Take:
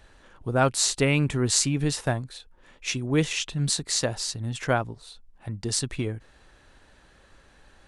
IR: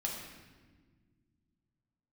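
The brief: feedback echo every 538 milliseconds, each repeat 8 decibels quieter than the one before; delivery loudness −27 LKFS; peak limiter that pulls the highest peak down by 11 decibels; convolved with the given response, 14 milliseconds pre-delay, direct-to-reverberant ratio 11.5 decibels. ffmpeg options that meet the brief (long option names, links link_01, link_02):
-filter_complex "[0:a]alimiter=limit=-15dB:level=0:latency=1,aecho=1:1:538|1076|1614|2152|2690:0.398|0.159|0.0637|0.0255|0.0102,asplit=2[link_01][link_02];[1:a]atrim=start_sample=2205,adelay=14[link_03];[link_02][link_03]afir=irnorm=-1:irlink=0,volume=-14dB[link_04];[link_01][link_04]amix=inputs=2:normalize=0"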